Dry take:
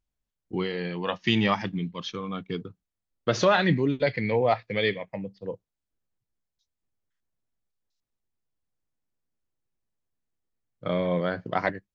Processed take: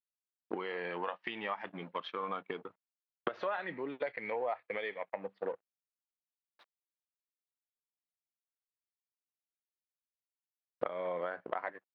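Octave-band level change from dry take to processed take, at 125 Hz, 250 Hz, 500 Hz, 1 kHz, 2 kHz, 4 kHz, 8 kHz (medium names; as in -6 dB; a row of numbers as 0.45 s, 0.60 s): -25.5 dB, -18.0 dB, -10.5 dB, -9.0 dB, -10.5 dB, -17.0 dB, no reading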